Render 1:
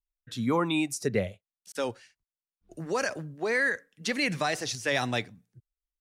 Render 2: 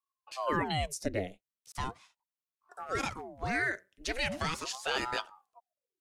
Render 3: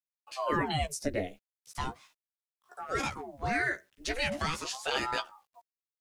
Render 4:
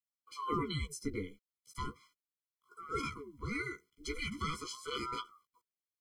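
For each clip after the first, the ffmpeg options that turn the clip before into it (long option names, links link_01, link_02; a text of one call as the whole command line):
ffmpeg -i in.wav -af "aeval=exprs='val(0)*sin(2*PI*600*n/s+600*0.85/0.39*sin(2*PI*0.39*n/s))':channel_layout=same,volume=-2dB" out.wav
ffmpeg -i in.wav -filter_complex "[0:a]asplit=2[link_01][link_02];[link_02]adelay=14,volume=-5dB[link_03];[link_01][link_03]amix=inputs=2:normalize=0,acrusher=bits=11:mix=0:aa=0.000001" out.wav
ffmpeg -i in.wav -af "afftfilt=real='re*eq(mod(floor(b*sr/1024/490),2),0)':imag='im*eq(mod(floor(b*sr/1024/490),2),0)':win_size=1024:overlap=0.75,volume=-3.5dB" out.wav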